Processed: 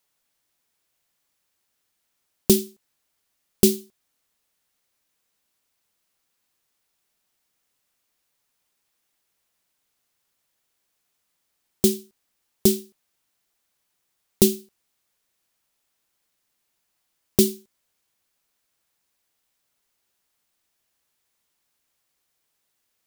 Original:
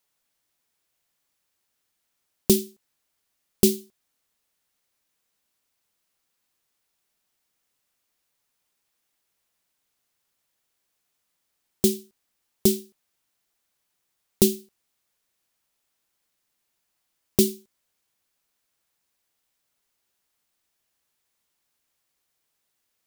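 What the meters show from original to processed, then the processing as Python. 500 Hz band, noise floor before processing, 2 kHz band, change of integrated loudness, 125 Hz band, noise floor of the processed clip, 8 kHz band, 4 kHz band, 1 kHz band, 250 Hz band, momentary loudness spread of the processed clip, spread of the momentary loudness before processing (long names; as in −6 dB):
+1.5 dB, −77 dBFS, +2.0 dB, +1.5 dB, +1.5 dB, −76 dBFS, +2.0 dB, +2.0 dB, +2.0 dB, +1.5 dB, 13 LU, 13 LU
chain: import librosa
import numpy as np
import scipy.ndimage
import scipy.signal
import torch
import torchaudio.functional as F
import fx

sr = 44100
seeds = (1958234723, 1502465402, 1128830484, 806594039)

p1 = fx.quant_float(x, sr, bits=2)
p2 = x + (p1 * 10.0 ** (-4.0 / 20.0))
y = p2 * 10.0 ** (-2.5 / 20.0)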